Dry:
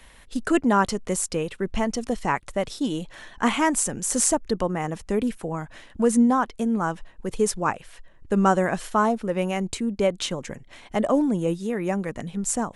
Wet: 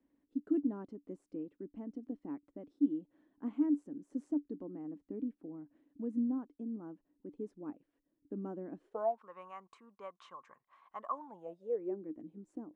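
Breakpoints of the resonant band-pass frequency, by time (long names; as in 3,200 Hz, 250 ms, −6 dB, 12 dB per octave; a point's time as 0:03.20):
resonant band-pass, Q 14
0:08.80 290 Hz
0:09.22 1,100 Hz
0:11.16 1,100 Hz
0:12.05 310 Hz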